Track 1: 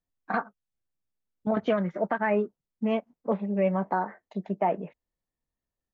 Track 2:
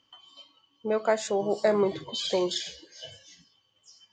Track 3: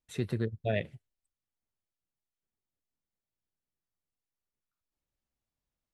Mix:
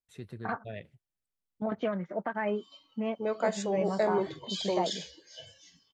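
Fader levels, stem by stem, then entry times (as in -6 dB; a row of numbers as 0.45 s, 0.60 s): -6.0 dB, -4.5 dB, -11.0 dB; 0.15 s, 2.35 s, 0.00 s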